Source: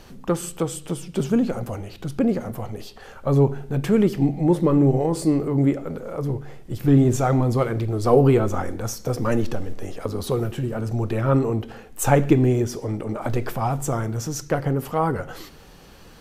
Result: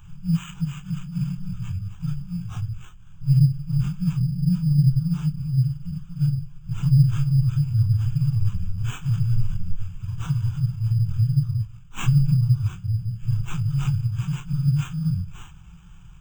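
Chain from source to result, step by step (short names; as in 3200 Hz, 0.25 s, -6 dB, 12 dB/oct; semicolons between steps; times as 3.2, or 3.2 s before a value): phase scrambler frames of 0.1 s; high shelf 12000 Hz +5 dB; in parallel at -1 dB: limiter -12 dBFS, peak gain reduction 9.5 dB; on the sum: FFT band-reject 190–11000 Hz; sample-rate reducer 4900 Hz, jitter 0%; fixed phaser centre 2900 Hz, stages 8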